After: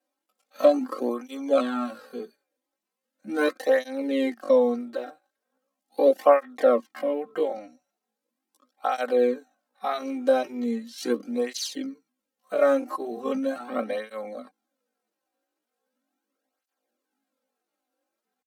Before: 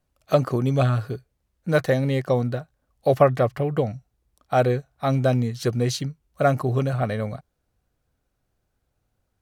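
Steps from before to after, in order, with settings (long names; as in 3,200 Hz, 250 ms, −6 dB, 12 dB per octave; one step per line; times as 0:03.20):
elliptic high-pass filter 230 Hz, stop band 40 dB
comb filter 3.8 ms, depth 63%
tempo change 0.51×
through-zero flanger with one copy inverted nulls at 0.39 Hz, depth 4.8 ms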